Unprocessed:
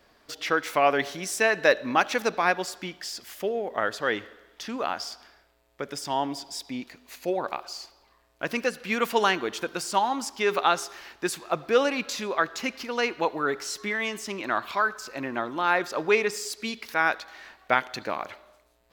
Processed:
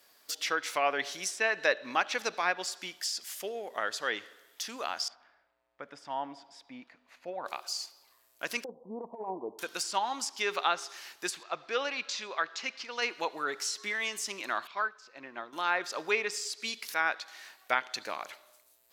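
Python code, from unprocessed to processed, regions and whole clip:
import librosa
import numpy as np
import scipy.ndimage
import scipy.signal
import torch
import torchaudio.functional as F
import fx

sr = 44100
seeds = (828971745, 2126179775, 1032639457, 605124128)

y = fx.chain(x, sr, fx.lowpass(hz=1600.0, slope=12),
    fx.peak_eq(hz=390.0, db=-10.0, octaves=0.3), at=(5.08, 7.46))
y = fx.chain(y, sr, fx.steep_lowpass(hz=1000.0, slope=96),
    fx.over_compress(threshold_db=-27.0, ratio=-0.5), at=(8.64, 9.59))
y = fx.chain(y, sr, fx.bessel_lowpass(hz=4100.0, order=4),
    fx.peak_eq(hz=220.0, db=-5.0, octaves=2.6), at=(11.43, 13.02))
y = fx.chain(y, sr, fx.air_absorb(metres=200.0),
    fx.upward_expand(threshold_db=-38.0, expansion=1.5), at=(14.67, 15.53))
y = fx.riaa(y, sr, side='recording')
y = fx.env_lowpass_down(y, sr, base_hz=2900.0, full_db=-18.0)
y = fx.high_shelf(y, sr, hz=8600.0, db=6.0)
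y = y * 10.0 ** (-6.5 / 20.0)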